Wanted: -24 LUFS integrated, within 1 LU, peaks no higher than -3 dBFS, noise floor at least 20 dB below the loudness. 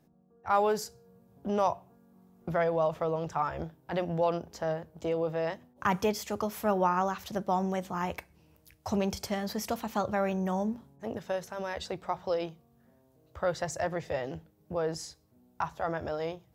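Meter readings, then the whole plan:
loudness -32.0 LUFS; peak -14.5 dBFS; loudness target -24.0 LUFS
-> gain +8 dB

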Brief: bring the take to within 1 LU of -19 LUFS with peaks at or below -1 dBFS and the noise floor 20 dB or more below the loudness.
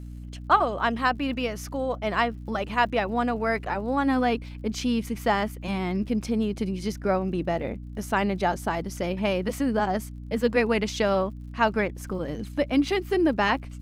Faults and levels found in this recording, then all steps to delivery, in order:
ticks 61/s; hum 60 Hz; harmonics up to 300 Hz; hum level -36 dBFS; loudness -26.5 LUFS; peak -7.0 dBFS; loudness target -19.0 LUFS
-> de-click; de-hum 60 Hz, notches 5; gain +7.5 dB; limiter -1 dBFS

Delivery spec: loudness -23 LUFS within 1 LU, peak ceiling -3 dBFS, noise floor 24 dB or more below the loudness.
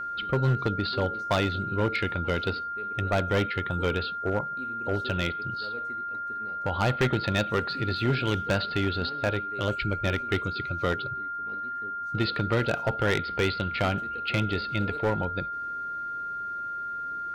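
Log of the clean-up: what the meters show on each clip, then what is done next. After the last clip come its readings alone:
clipped 0.9%; flat tops at -18.5 dBFS; steady tone 1400 Hz; tone level -31 dBFS; loudness -28.5 LUFS; peak -18.5 dBFS; loudness target -23.0 LUFS
-> clip repair -18.5 dBFS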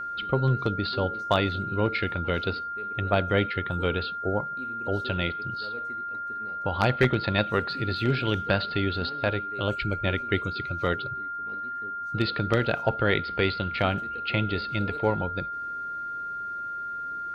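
clipped 0.0%; steady tone 1400 Hz; tone level -31 dBFS
-> notch 1400 Hz, Q 30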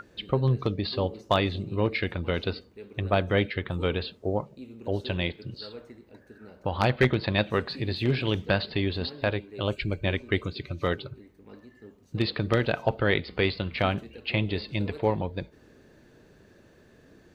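steady tone none; loudness -28.0 LUFS; peak -9.0 dBFS; loudness target -23.0 LUFS
-> gain +5 dB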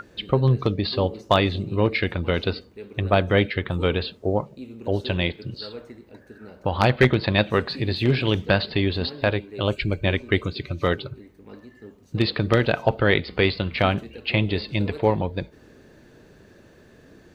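loudness -23.0 LUFS; peak -4.0 dBFS; noise floor -52 dBFS

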